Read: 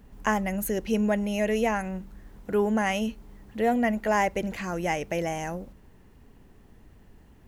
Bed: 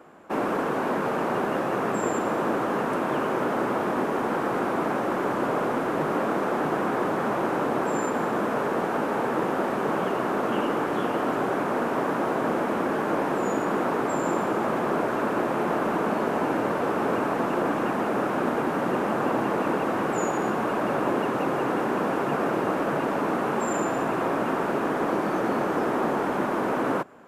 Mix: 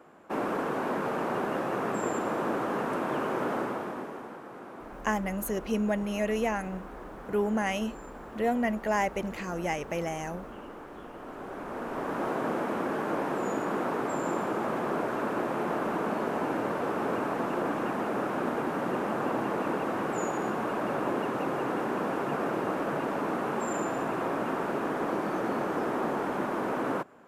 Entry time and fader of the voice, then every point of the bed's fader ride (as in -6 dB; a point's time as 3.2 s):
4.80 s, -3.5 dB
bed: 3.55 s -4.5 dB
4.42 s -18.5 dB
11.14 s -18.5 dB
12.25 s -5 dB